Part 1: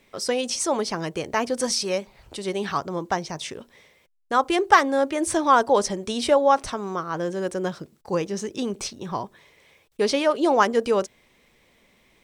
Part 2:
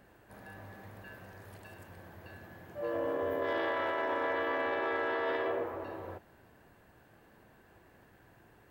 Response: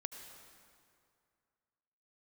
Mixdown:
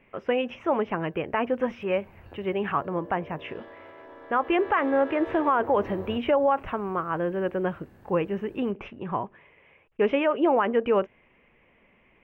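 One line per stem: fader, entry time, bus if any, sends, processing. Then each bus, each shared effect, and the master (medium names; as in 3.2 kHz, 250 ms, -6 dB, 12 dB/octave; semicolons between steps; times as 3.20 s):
+0.5 dB, 0.00 s, no send, elliptic low-pass 2.8 kHz, stop band 40 dB
1.53 s -19 dB -> 2.11 s -9 dB -> 4.26 s -9 dB -> 4.74 s 0 dB, 0.00 s, no send, peak limiter -32.5 dBFS, peak gain reduction 8.5 dB; bass shelf 330 Hz +11 dB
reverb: none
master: peak limiter -13.5 dBFS, peak gain reduction 11.5 dB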